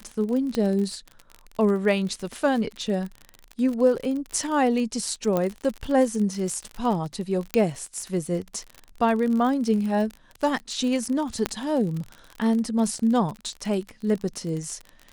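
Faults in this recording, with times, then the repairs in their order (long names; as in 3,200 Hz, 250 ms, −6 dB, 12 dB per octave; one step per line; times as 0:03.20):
surface crackle 44 per second −29 dBFS
0:00.55: click −14 dBFS
0:05.37: click −12 dBFS
0:07.54: click −8 dBFS
0:11.46: click −8 dBFS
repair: click removal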